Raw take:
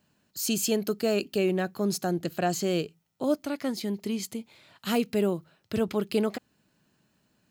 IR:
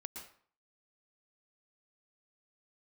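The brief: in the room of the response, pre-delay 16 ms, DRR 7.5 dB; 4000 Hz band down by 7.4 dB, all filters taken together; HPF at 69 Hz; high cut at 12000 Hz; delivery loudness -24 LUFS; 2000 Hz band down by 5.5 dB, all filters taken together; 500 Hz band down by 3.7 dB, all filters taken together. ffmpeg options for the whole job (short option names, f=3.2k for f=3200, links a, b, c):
-filter_complex "[0:a]highpass=69,lowpass=12k,equalizer=f=500:t=o:g=-4.5,equalizer=f=2k:t=o:g=-4.5,equalizer=f=4k:t=o:g=-8.5,asplit=2[a][b];[1:a]atrim=start_sample=2205,adelay=16[c];[b][c]afir=irnorm=-1:irlink=0,volume=-4.5dB[d];[a][d]amix=inputs=2:normalize=0,volume=6.5dB"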